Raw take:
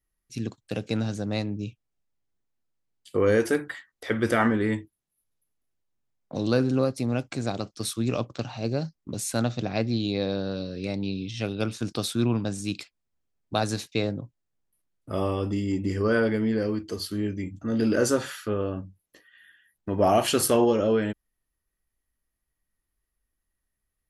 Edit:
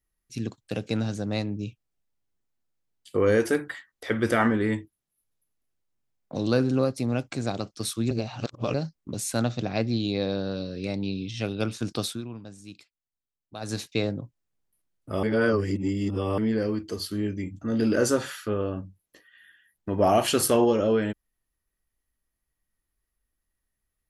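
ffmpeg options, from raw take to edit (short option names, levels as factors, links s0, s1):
-filter_complex "[0:a]asplit=7[s0][s1][s2][s3][s4][s5][s6];[s0]atrim=end=8.112[s7];[s1]atrim=start=8.108:end=8.742,asetpts=PTS-STARTPTS,areverse[s8];[s2]atrim=start=8.738:end=12.22,asetpts=PTS-STARTPTS,afade=t=out:st=3.252:d=0.23:c=qsin:silence=0.199526[s9];[s3]atrim=start=12.22:end=13.6,asetpts=PTS-STARTPTS,volume=0.2[s10];[s4]atrim=start=13.6:end=15.232,asetpts=PTS-STARTPTS,afade=t=in:d=0.23:c=qsin:silence=0.199526[s11];[s5]atrim=start=15.228:end=16.382,asetpts=PTS-STARTPTS,areverse[s12];[s6]atrim=start=16.378[s13];[s7][s8]acrossfade=d=0.004:c1=hsin:c2=hsin[s14];[s9][s10][s11]concat=n=3:v=0:a=1[s15];[s14][s15]acrossfade=d=0.004:c1=hsin:c2=hsin[s16];[s16][s12]acrossfade=d=0.004:c1=hsin:c2=hsin[s17];[s17][s13]acrossfade=d=0.004:c1=hsin:c2=hsin"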